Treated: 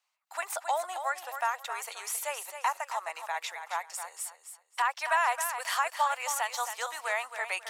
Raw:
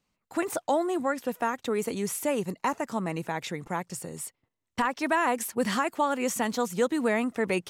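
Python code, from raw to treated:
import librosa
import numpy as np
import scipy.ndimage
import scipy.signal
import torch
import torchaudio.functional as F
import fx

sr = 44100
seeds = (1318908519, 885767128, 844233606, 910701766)

p1 = scipy.signal.sosfilt(scipy.signal.butter(6, 700.0, 'highpass', fs=sr, output='sos'), x)
y = p1 + fx.echo_feedback(p1, sr, ms=269, feedback_pct=25, wet_db=-9, dry=0)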